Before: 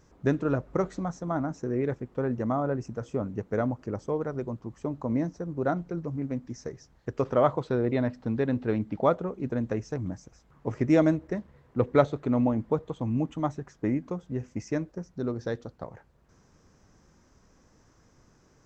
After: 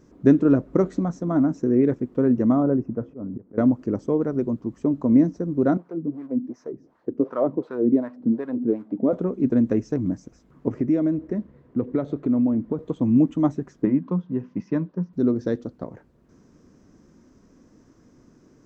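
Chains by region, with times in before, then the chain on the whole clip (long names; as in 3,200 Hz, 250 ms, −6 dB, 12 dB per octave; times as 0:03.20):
0:02.63–0:03.58: low-pass filter 1,300 Hz + volume swells 241 ms
0:05.77–0:09.13: mu-law and A-law mismatch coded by mu + high-shelf EQ 3,900 Hz +5.5 dB + LFO wah 2.7 Hz 220–1,200 Hz, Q 2
0:10.68–0:12.79: downward compressor 3 to 1, threshold −30 dBFS + high-shelf EQ 3,700 Hz −9 dB
0:13.85–0:15.13: loudspeaker in its box 150–4,000 Hz, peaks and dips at 180 Hz +8 dB, 320 Hz −7 dB, 460 Hz −4 dB, 670 Hz −5 dB, 1,000 Hz +8 dB, 2,200 Hz −5 dB + notch filter 230 Hz, Q 5.4
whole clip: parametric band 270 Hz +14 dB 1.5 octaves; notch filter 820 Hz, Q 12; level −1 dB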